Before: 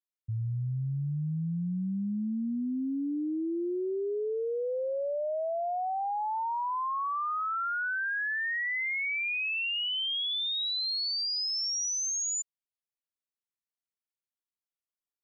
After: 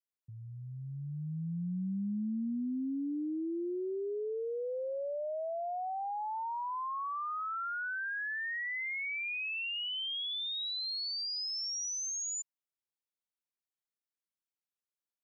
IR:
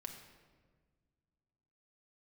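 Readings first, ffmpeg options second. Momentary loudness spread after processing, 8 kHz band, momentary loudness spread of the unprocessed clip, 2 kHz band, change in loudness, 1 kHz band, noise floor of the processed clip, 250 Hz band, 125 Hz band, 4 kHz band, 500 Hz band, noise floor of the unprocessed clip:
5 LU, can't be measured, 4 LU, −5.5 dB, −5.0 dB, −5.5 dB, below −85 dBFS, −3.5 dB, −8.0 dB, −5.5 dB, −5.0 dB, below −85 dBFS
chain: -af "lowshelf=frequency=130:width_type=q:width=1.5:gain=-11,volume=-5.5dB"

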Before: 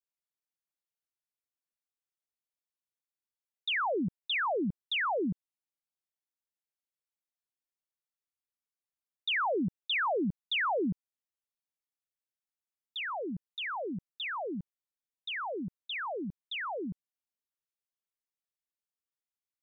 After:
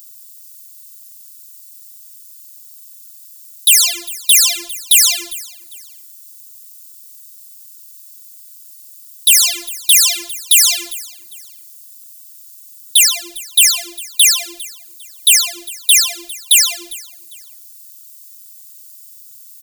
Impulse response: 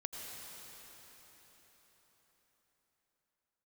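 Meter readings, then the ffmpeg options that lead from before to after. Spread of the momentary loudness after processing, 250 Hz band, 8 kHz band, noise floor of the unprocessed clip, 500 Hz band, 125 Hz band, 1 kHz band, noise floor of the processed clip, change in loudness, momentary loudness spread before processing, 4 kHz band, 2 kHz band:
18 LU, −7.5 dB, can't be measured, below −85 dBFS, −7.0 dB, below −25 dB, −4.5 dB, −40 dBFS, +22.5 dB, 10 LU, +23.5 dB, +12.5 dB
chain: -filter_complex "[0:a]highshelf=frequency=2700:gain=10,asoftclip=type=hard:threshold=-38dB,aexciter=amount=9.3:drive=6:freq=2200,afftfilt=real='hypot(re,im)*cos(PI*b)':imag='0':win_size=512:overlap=0.75,asplit=2[link_01][link_02];[link_02]aecho=0:1:401|802:0.0631|0.0196[link_03];[link_01][link_03]amix=inputs=2:normalize=0,crystalizer=i=8:c=0,apsyclip=5dB,volume=-2dB"

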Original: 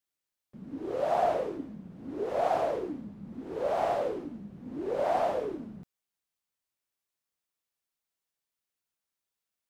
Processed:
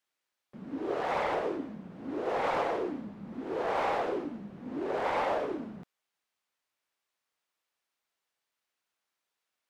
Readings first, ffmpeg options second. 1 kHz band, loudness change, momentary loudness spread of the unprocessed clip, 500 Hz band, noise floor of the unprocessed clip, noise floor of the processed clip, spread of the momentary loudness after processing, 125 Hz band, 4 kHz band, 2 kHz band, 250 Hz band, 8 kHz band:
−1.0 dB, −1.5 dB, 16 LU, −2.5 dB, below −85 dBFS, below −85 dBFS, 13 LU, −1.5 dB, +4.0 dB, +6.5 dB, +1.5 dB, can't be measured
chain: -filter_complex "[0:a]asplit=2[link_01][link_02];[link_02]highpass=frequency=720:poles=1,volume=15dB,asoftclip=type=tanh:threshold=-15dB[link_03];[link_01][link_03]amix=inputs=2:normalize=0,lowpass=frequency=2400:poles=1,volume=-6dB,afftfilt=real='re*lt(hypot(re,im),0.355)':imag='im*lt(hypot(re,im),0.355)':win_size=1024:overlap=0.75"

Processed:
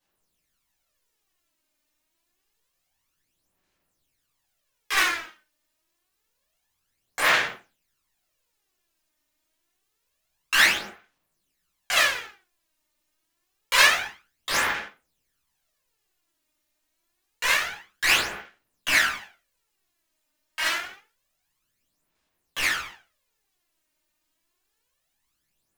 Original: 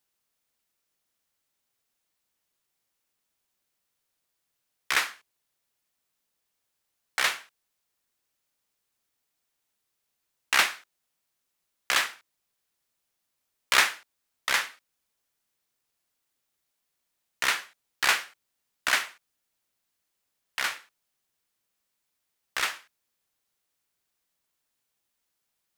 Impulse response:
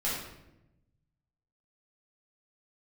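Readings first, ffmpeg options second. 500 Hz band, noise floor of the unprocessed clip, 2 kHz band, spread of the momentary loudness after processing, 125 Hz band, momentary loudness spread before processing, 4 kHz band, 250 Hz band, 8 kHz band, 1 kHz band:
+7.0 dB, −80 dBFS, +5.5 dB, 19 LU, can't be measured, 16 LU, +4.5 dB, +8.0 dB, +3.5 dB, +3.5 dB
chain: -filter_complex "[1:a]atrim=start_sample=2205,afade=type=out:start_time=0.44:duration=0.01,atrim=end_sample=19845,asetrate=57330,aresample=44100[link_01];[0:a][link_01]afir=irnorm=-1:irlink=0,acrusher=bits=5:mode=log:mix=0:aa=0.000001,aphaser=in_gain=1:out_gain=1:delay=3.3:decay=0.6:speed=0.27:type=sinusoidal,volume=-2dB"

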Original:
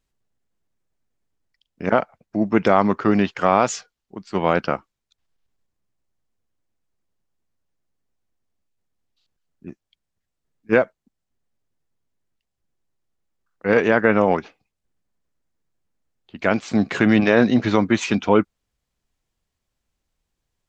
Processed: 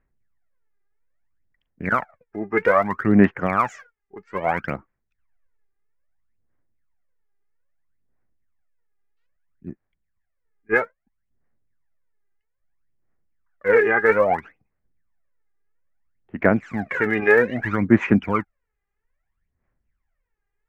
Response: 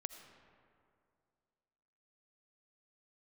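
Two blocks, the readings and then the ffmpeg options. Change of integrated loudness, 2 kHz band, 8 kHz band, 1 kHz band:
−1.0 dB, +2.5 dB, can't be measured, −2.0 dB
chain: -af "highshelf=frequency=2800:width_type=q:width=3:gain=-13.5,aphaser=in_gain=1:out_gain=1:delay=2.5:decay=0.78:speed=0.61:type=sinusoidal,volume=-7dB"

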